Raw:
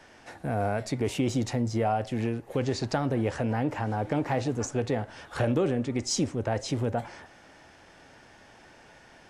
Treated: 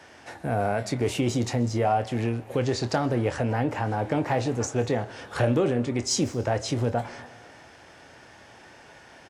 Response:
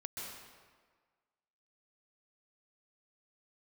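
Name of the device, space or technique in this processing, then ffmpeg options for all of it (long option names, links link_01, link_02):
saturated reverb return: -filter_complex "[0:a]highpass=60,equalizer=frequency=210:width=1.5:gain=-2.5,asplit=2[link_01][link_02];[link_02]adelay=25,volume=-11.5dB[link_03];[link_01][link_03]amix=inputs=2:normalize=0,asplit=2[link_04][link_05];[1:a]atrim=start_sample=2205[link_06];[link_05][link_06]afir=irnorm=-1:irlink=0,asoftclip=type=tanh:threshold=-33dB,volume=-11.5dB[link_07];[link_04][link_07]amix=inputs=2:normalize=0,volume=2.5dB"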